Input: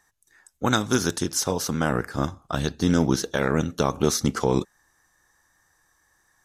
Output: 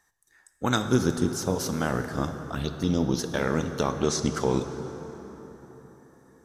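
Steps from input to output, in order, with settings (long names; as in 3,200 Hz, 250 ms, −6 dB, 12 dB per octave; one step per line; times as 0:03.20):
0:00.85–0:01.55: tilt shelving filter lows +6 dB, about 750 Hz
0:02.37–0:03.19: phaser swept by the level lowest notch 180 Hz, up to 1,700 Hz, full sweep at −20.5 dBFS
0:03.90–0:04.34: low-pass filter 8,500 Hz 24 dB per octave
dense smooth reverb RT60 4.5 s, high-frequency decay 0.55×, DRR 7.5 dB
level −3.5 dB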